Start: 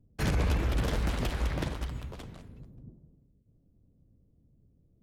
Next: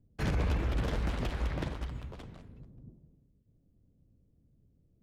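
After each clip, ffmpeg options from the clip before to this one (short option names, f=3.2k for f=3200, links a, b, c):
-af "lowpass=f=4k:p=1,volume=-2.5dB"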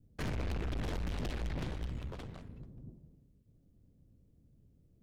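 -af "adynamicequalizer=threshold=0.00178:dfrequency=1100:dqfactor=1.1:tfrequency=1100:tqfactor=1.1:attack=5:release=100:ratio=0.375:range=3:mode=cutabove:tftype=bell,aeval=exprs='(tanh(89.1*val(0)+0.55)-tanh(0.55))/89.1':c=same,volume=4.5dB"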